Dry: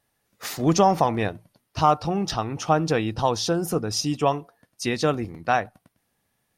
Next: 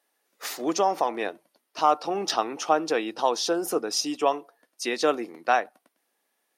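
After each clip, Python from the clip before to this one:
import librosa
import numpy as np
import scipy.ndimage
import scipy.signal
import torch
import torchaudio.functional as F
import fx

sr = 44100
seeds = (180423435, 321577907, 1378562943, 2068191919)

y = scipy.signal.sosfilt(scipy.signal.butter(4, 300.0, 'highpass', fs=sr, output='sos'), x)
y = fx.rider(y, sr, range_db=10, speed_s=0.5)
y = y * 10.0 ** (-1.0 / 20.0)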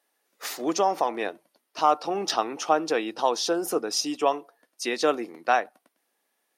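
y = x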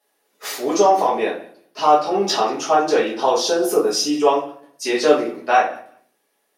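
y = fx.echo_feedback(x, sr, ms=185, feedback_pct=16, wet_db=-23.5)
y = fx.room_shoebox(y, sr, seeds[0], volume_m3=37.0, walls='mixed', distance_m=1.4)
y = y * 10.0 ** (-1.5 / 20.0)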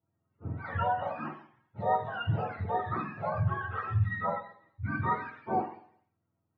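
y = fx.octave_mirror(x, sr, pivot_hz=750.0)
y = fx.comb_fb(y, sr, f0_hz=310.0, decay_s=0.59, harmonics='all', damping=0.0, mix_pct=60)
y = y * 10.0 ** (-6.0 / 20.0)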